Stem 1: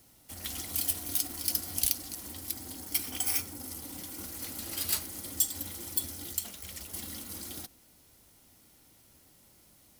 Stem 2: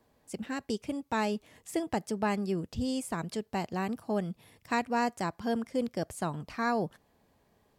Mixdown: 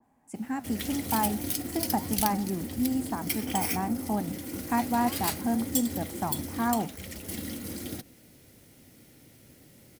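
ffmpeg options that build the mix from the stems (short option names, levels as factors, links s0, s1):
-filter_complex "[0:a]equalizer=f=125:t=o:w=1:g=10,equalizer=f=250:t=o:w=1:g=7,equalizer=f=500:t=o:w=1:g=8,equalizer=f=1000:t=o:w=1:g=-5,equalizer=f=2000:t=o:w=1:g=7,adelay=350,volume=1.19[s0];[1:a]equalizer=f=800:t=o:w=0.7:g=14.5,flanger=delay=8.2:depth=5.8:regen=-80:speed=1.9:shape=triangular,equalizer=f=250:t=o:w=1:g=12,equalizer=f=500:t=o:w=1:g=-9,equalizer=f=2000:t=o:w=1:g=5,equalizer=f=4000:t=o:w=1:g=-11,equalizer=f=8000:t=o:w=1:g=6,volume=0.891[s1];[s0][s1]amix=inputs=2:normalize=0,adynamicequalizer=threshold=0.00447:dfrequency=1800:dqfactor=0.7:tfrequency=1800:tqfactor=0.7:attack=5:release=100:ratio=0.375:range=2:mode=cutabove:tftype=highshelf"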